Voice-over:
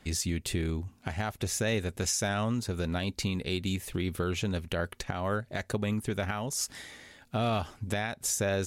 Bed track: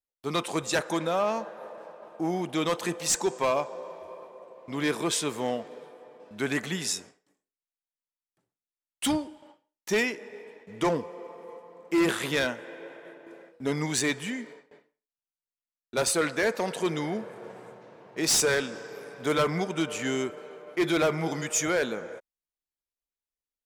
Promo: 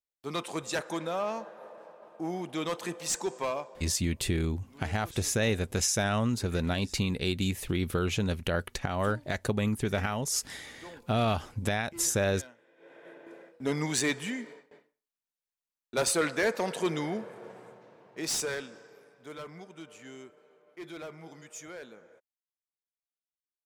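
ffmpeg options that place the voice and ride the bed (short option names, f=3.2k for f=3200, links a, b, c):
-filter_complex "[0:a]adelay=3750,volume=2dB[a];[1:a]volume=15dB,afade=t=out:st=3.41:d=0.57:silence=0.149624,afade=t=in:st=12.76:d=0.42:silence=0.0944061,afade=t=out:st=16.95:d=2.25:silence=0.149624[b];[a][b]amix=inputs=2:normalize=0"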